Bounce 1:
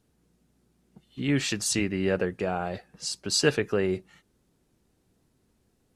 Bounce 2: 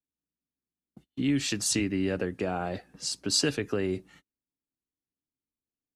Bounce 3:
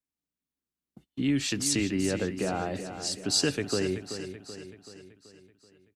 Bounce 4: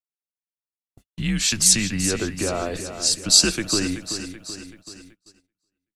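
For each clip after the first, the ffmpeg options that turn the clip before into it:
-filter_complex "[0:a]agate=range=0.0251:threshold=0.002:ratio=16:detection=peak,equalizer=f=280:t=o:w=0.34:g=9,acrossover=split=120|3000[s0][s1][s2];[s1]acompressor=threshold=0.0501:ratio=4[s3];[s0][s3][s2]amix=inputs=3:normalize=0"
-af "aecho=1:1:381|762|1143|1524|1905|2286:0.316|0.164|0.0855|0.0445|0.0231|0.012"
-af "afreqshift=-100,agate=range=0.0501:threshold=0.00282:ratio=16:detection=peak,bass=f=250:g=-5,treble=f=4000:g=8,volume=2"

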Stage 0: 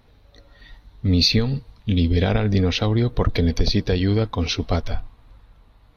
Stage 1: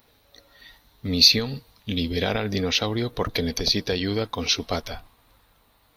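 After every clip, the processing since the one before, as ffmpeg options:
-af "aemphasis=mode=production:type=bsi,volume=0.891"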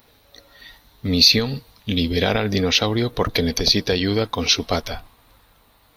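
-af "alimiter=level_in=2:limit=0.891:release=50:level=0:latency=1,volume=0.891"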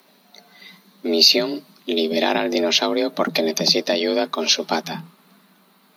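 -af "afreqshift=150"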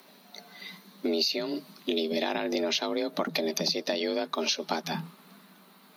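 -af "acompressor=threshold=0.0501:ratio=6"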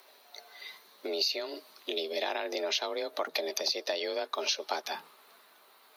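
-af "highpass=f=410:w=0.5412,highpass=f=410:w=1.3066,volume=0.794"

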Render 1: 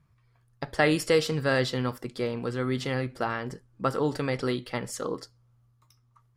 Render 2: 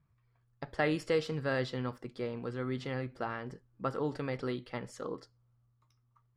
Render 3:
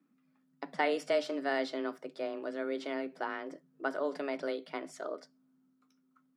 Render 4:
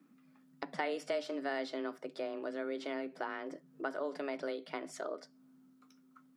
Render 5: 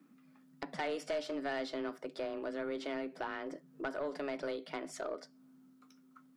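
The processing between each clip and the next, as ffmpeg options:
-af "aemphasis=mode=reproduction:type=50fm,volume=0.422"
-af "afreqshift=140"
-af "acompressor=threshold=0.00282:ratio=2,volume=2.37"
-af "aeval=exprs='(tanh(31.6*val(0)+0.1)-tanh(0.1))/31.6':c=same,volume=1.19"

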